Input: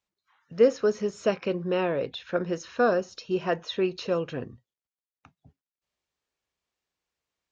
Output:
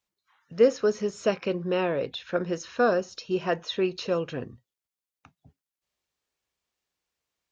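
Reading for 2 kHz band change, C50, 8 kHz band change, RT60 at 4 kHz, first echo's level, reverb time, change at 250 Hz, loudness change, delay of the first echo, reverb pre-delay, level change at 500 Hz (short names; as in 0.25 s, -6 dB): +0.5 dB, none, n/a, none, none, none, 0.0 dB, 0.0 dB, none, none, 0.0 dB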